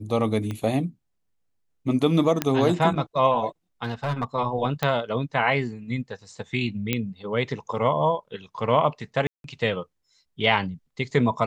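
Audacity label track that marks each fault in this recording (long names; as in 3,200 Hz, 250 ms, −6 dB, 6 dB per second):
0.510000	0.510000	click −19 dBFS
2.420000	2.420000	click −7 dBFS
3.840000	4.240000	clipping −19 dBFS
4.830000	4.830000	click −10 dBFS
6.930000	6.930000	click −9 dBFS
9.270000	9.440000	drop-out 172 ms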